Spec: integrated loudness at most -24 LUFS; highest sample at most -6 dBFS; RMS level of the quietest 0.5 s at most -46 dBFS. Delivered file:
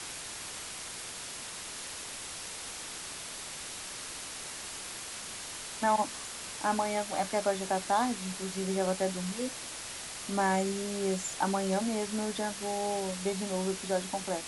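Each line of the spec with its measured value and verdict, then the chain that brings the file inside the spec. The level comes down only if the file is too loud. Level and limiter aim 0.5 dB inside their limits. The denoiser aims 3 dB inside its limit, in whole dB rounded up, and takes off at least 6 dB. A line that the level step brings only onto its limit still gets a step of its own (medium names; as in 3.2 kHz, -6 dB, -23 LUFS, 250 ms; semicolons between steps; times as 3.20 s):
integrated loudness -33.5 LUFS: pass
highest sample -15.5 dBFS: pass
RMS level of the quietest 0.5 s -42 dBFS: fail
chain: noise reduction 7 dB, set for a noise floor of -42 dBFS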